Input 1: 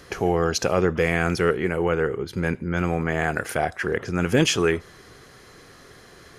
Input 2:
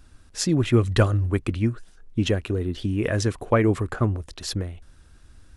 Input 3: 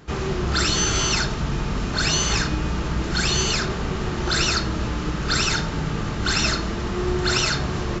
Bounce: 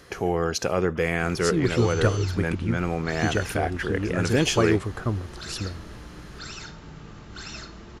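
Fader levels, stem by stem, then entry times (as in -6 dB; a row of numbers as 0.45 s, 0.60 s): -3.0 dB, -4.0 dB, -17.0 dB; 0.00 s, 1.05 s, 1.10 s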